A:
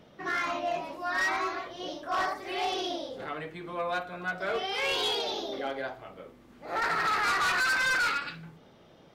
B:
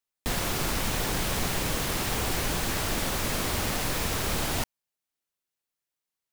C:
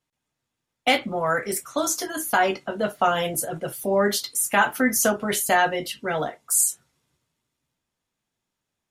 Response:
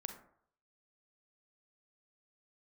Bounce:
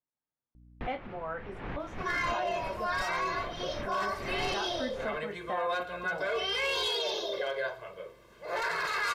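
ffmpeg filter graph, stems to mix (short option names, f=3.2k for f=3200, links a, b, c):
-filter_complex "[0:a]aecho=1:1:1.9:0.98,adelay=1800,volume=0dB[a];[1:a]lowpass=f=2.4k:w=0.5412,lowpass=f=2.4k:w=1.3066,aeval=exprs='val(0)+0.00447*(sin(2*PI*60*n/s)+sin(2*PI*2*60*n/s)/2+sin(2*PI*3*60*n/s)/3+sin(2*PI*4*60*n/s)/4+sin(2*PI*5*60*n/s)/5)':c=same,adelay=550,volume=-7.5dB[b];[2:a]lowpass=1.4k,volume=-12dB,asplit=2[c][d];[d]apad=whole_len=303099[e];[b][e]sidechaincompress=threshold=-50dB:ratio=4:attack=32:release=148[f];[a][c]amix=inputs=2:normalize=0,lowshelf=f=250:g=-8,alimiter=limit=-23.5dB:level=0:latency=1:release=19,volume=0dB[g];[f][g]amix=inputs=2:normalize=0"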